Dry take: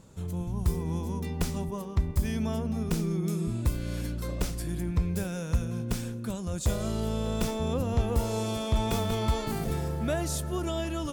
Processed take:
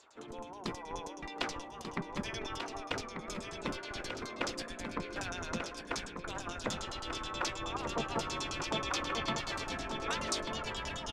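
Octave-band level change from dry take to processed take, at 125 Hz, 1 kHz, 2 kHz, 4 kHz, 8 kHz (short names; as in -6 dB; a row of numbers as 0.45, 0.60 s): -18.0, 0.0, +4.0, +2.0, -3.5 dB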